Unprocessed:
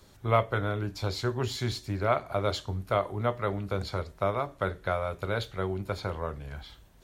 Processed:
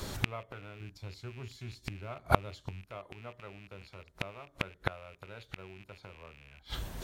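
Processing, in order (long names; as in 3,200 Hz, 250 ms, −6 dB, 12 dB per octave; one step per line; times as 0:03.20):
loose part that buzzes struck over −39 dBFS, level −24 dBFS
0:00.80–0:02.85: bass and treble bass +7 dB, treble +2 dB
gate with flip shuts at −26 dBFS, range −35 dB
level +16.5 dB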